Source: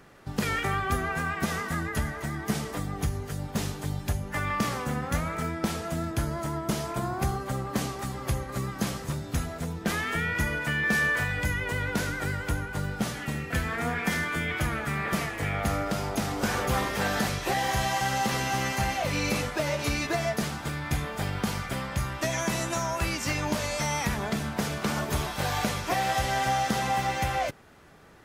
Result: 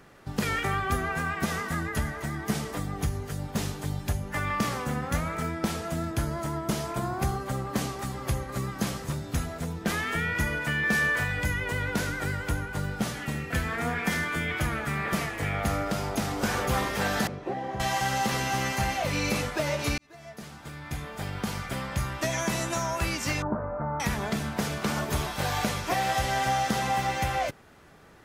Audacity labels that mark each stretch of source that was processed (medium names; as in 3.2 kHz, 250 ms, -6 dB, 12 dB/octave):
17.270000	17.800000	band-pass filter 320 Hz, Q 0.83
19.980000	21.940000	fade in
23.420000	24.000000	elliptic low-pass 1.4 kHz, stop band 60 dB